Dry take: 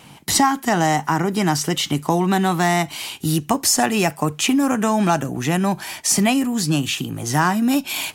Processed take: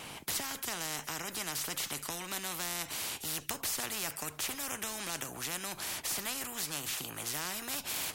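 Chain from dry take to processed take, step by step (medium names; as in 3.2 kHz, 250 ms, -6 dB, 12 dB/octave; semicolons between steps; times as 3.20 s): spectrum-flattening compressor 4:1; trim -8.5 dB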